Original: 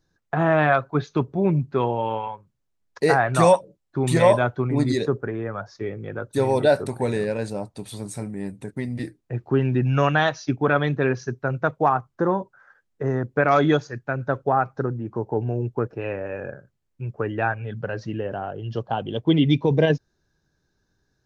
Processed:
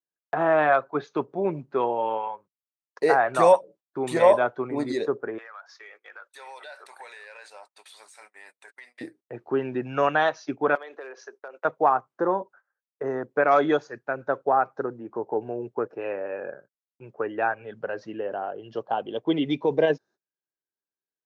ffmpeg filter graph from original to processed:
ffmpeg -i in.wav -filter_complex "[0:a]asettb=1/sr,asplit=3[link_01][link_02][link_03];[link_01]atrim=end=5.384[link_04];[link_02]atrim=start=5.38:end=9.01,asetpts=PTS-STARTPTS,afade=type=in:duration=0.004:curve=qsin,afade=type=out:start_time=3.626:duration=0.004:curve=qsin,highpass=1500,acompressor=threshold=-48dB:ratio=5:attack=3.2:release=140:knee=1:detection=peak,asplit=2[link_05][link_06];[link_06]highpass=frequency=720:poles=1,volume=17dB,asoftclip=type=tanh:threshold=-25dB[link_07];[link_05][link_07]amix=inputs=2:normalize=0,lowpass=frequency=5000:poles=1,volume=-6dB[link_08];[link_03]atrim=start=9.006[link_09];[link_04][link_08]acrossfade=duration=0.004:curve1=hsin:curve2=qsin[link_10];[link_10][link_09]acrossfade=duration=0.004:curve1=qsin:curve2=hsin,asettb=1/sr,asplit=3[link_11][link_12][link_13];[link_11]atrim=end=10.754[link_14];[link_12]atrim=start=10.75:end=11.65,asetpts=PTS-STARTPTS,afade=type=in:duration=0.004:curve=qsin,afade=type=out:start_time=0.896:duration=0.004:curve=qsin,highpass=frequency=420:width=0.5412,highpass=frequency=420:width=1.3066,asoftclip=type=hard:threshold=-17dB,acompressor=threshold=-33dB:ratio=16:attack=3.2:release=140:knee=1:detection=peak[link_15];[link_13]atrim=start=11.646[link_16];[link_14][link_15]acrossfade=duration=0.004:curve1=hsin:curve2=qsin[link_17];[link_17][link_16]acrossfade=duration=0.004:curve1=qsin:curve2=hsin,agate=range=-25dB:threshold=-46dB:ratio=16:detection=peak,highpass=410,highshelf=frequency=2100:gain=-10.5,volume=1.5dB" out.wav

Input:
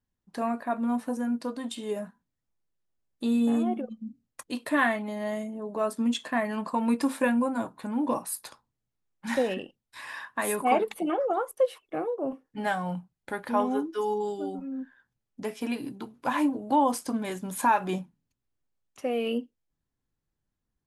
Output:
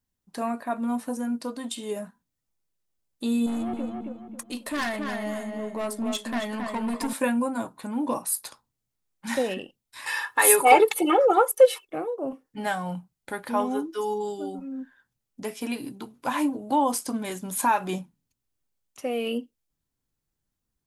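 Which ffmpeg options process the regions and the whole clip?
ffmpeg -i in.wav -filter_complex "[0:a]asettb=1/sr,asplit=3[link_01][link_02][link_03];[link_01]atrim=end=3.464[link_04];[link_02]atrim=start=3.46:end=7.13,asetpts=PTS-STARTPTS,afade=type=in:duration=0.004:curve=qsin,afade=type=out:start_time=3.666:duration=0.004:curve=qsin,aeval=exprs='(tanh(17.8*val(0)+0.15)-tanh(0.15))/17.8':channel_layout=same,asplit=2[link_05][link_06];[link_06]adelay=272,lowpass=frequency=3000:poles=1,volume=-4dB,asplit=2[link_07][link_08];[link_08]adelay=272,lowpass=frequency=3000:poles=1,volume=0.36,asplit=2[link_09][link_10];[link_10]adelay=272,lowpass=frequency=3000:poles=1,volume=0.36,asplit=2[link_11][link_12];[link_12]adelay=272,lowpass=frequency=3000:poles=1,volume=0.36,asplit=2[link_13][link_14];[link_14]adelay=272,lowpass=frequency=3000:poles=1,volume=0.36[link_15];[link_05][link_07][link_09][link_11][link_13][link_15]amix=inputs=6:normalize=0,atrim=end_sample=161847[link_16];[link_03]atrim=start=7.126[link_17];[link_04][link_16]acrossfade=duration=0.004:curve1=hsin:curve2=qsin[link_18];[link_18][link_17]acrossfade=duration=0.004:curve1=qsin:curve2=hsin,asettb=1/sr,asplit=3[link_19][link_20][link_21];[link_19]atrim=end=10.064[link_22];[link_20]atrim=start=10.06:end=11.85,asetpts=PTS-STARTPTS,afade=type=in:duration=0.004:curve=qsin,afade=type=out:start_time=1.786:duration=0.004:curve=qsin,lowshelf=frequency=210:gain=-11,aecho=1:1:2.3:0.94,atrim=end_sample=78939,acontrast=79[link_23];[link_21]atrim=start=11.846[link_24];[link_22][link_23]acrossfade=duration=0.004:curve1=hsin:curve2=qsin[link_25];[link_25][link_24]acrossfade=duration=0.004:curve1=qsin:curve2=hsin,highshelf=frequency=4300:gain=8,bandreject=frequency=1700:width=30" out.wav

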